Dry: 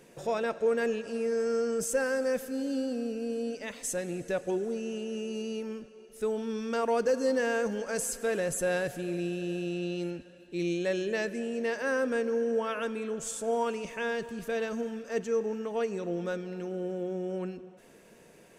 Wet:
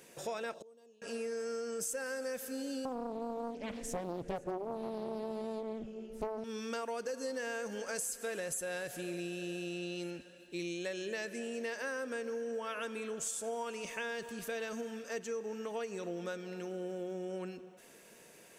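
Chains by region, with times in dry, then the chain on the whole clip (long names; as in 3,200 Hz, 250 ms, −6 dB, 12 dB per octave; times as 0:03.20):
0:00.54–0:01.02: flat-topped bell 1,800 Hz −16 dB 1.1 octaves + gate with flip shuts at −34 dBFS, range −28 dB
0:02.85–0:06.44: spectral tilt −4.5 dB per octave + single-tap delay 512 ms −16 dB + highs frequency-modulated by the lows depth 0.77 ms
whole clip: spectral tilt +2 dB per octave; downward compressor, threshold −34 dBFS; level −1.5 dB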